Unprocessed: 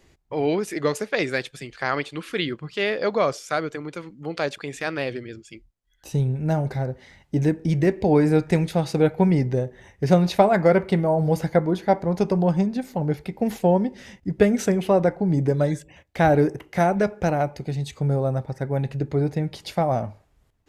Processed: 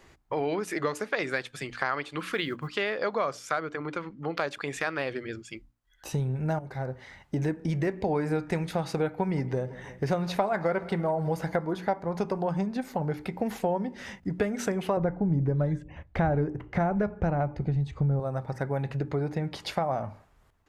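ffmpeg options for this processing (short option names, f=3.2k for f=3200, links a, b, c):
-filter_complex "[0:a]asettb=1/sr,asplit=3[a][b][c];[a]atrim=end=2.204[d];[b]atrim=start=2.2:end=2.69,asetpts=PTS-STARTPTS,afade=t=in:d=0.004:c=qsin,afade=t=out:st=0.486:d=0.004:c=qsin,acrusher=bits=9:mode=log:mix=0:aa=0.000001[e];[c]atrim=start=2.686[f];[d][e]acrossfade=d=0.004:c1=hsin:c2=qsin[g];[g][f]acrossfade=d=0.004:c1=qsin:c2=hsin,asettb=1/sr,asplit=3[h][i][j];[h]atrim=end=3.514[k];[i]atrim=start=3.51:end=4.42,asetpts=PTS-STARTPTS,afade=t=in:d=0.004:c=qsin,afade=t=out:st=0.906:d=0.004:c=qsin,adynamicsmooth=sensitivity=2.5:basefreq=5.1k[l];[j]atrim=start=4.416[m];[k][l]acrossfade=d=0.004:c1=hsin:c2=qsin[n];[n][m]acrossfade=d=0.004:c1=qsin:c2=hsin,asplit=3[o][p][q];[o]afade=t=out:st=9.33:d=0.02[r];[p]aecho=1:1:165|330|495|660:0.0794|0.0437|0.024|0.0132,afade=t=in:st=9.33:d=0.02,afade=t=out:st=11.73:d=0.02[s];[q]afade=t=in:st=11.73:d=0.02[t];[r][s][t]amix=inputs=3:normalize=0,asettb=1/sr,asplit=3[u][v][w];[u]atrim=end=14.974[x];[v]atrim=start=14.97:end=18.2,asetpts=PTS-STARTPTS,afade=t=in:d=0.004:c=qsin,afade=t=out:st=3.226:d=0.004:c=qsin,aemphasis=mode=reproduction:type=riaa[y];[w]atrim=start=18.196[z];[x][y]acrossfade=d=0.004:c1=hsin:c2=qsin[aa];[aa][z]acrossfade=d=0.004:c1=qsin:c2=hsin,asettb=1/sr,asplit=3[ab][ac][ad];[ab]atrim=end=18.834[ae];[ac]atrim=start=18.83:end=20.01,asetpts=PTS-STARTPTS,afade=t=in:d=0.004:c=qsin,afade=t=out:st=1.176:d=0.004:c=qsin,highshelf=f=8.2k:g=-6[af];[ad]atrim=start=20.006[ag];[ae][af]acrossfade=d=0.004:c1=hsin:c2=qsin[ah];[ah][ag]acrossfade=d=0.004:c1=qsin:c2=hsin,asplit=2[ai][aj];[ai]atrim=end=6.59,asetpts=PTS-STARTPTS,afade=t=out:st=6.586:d=0.004:c=hsin:silence=0.199526[ak];[aj]atrim=start=6.59,asetpts=PTS-STARTPTS,afade=t=in:d=1.02:c=qsin:silence=0.199526[al];[ak][al]concat=n=2:v=0:a=1,equalizer=f=1.2k:w=0.89:g=8,bandreject=f=60:t=h:w=6,bandreject=f=120:t=h:w=6,bandreject=f=180:t=h:w=6,bandreject=f=240:t=h:w=6,bandreject=f=300:t=h:w=6,acompressor=threshold=-28dB:ratio=3"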